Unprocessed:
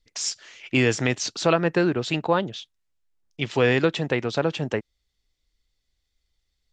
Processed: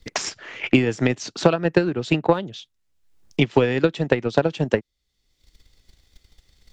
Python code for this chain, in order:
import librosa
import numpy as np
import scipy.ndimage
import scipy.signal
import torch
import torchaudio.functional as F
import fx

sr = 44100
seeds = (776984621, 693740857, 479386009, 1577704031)

y = fx.peak_eq(x, sr, hz=210.0, db=4.5, octaves=2.9)
y = fx.transient(y, sr, attack_db=12, sustain_db=-2)
y = fx.band_squash(y, sr, depth_pct=70)
y = y * 10.0 ** (-5.5 / 20.0)